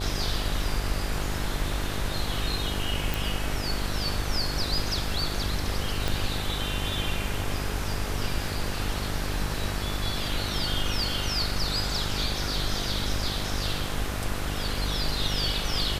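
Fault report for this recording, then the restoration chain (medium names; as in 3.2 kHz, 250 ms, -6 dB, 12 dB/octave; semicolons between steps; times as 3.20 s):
buzz 50 Hz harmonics 17 -33 dBFS
3.14 s: pop
6.08 s: pop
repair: de-click; de-hum 50 Hz, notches 17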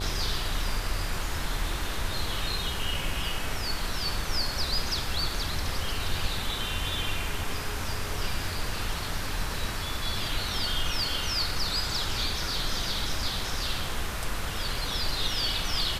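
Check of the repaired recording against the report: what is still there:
6.08 s: pop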